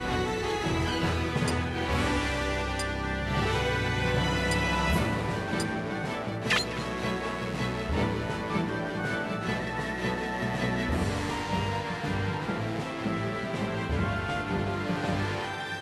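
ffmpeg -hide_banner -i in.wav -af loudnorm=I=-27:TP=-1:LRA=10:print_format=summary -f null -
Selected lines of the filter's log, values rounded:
Input Integrated:    -29.6 LUFS
Input True Peak:     -12.2 dBTP
Input LRA:             2.8 LU
Input Threshold:     -39.6 LUFS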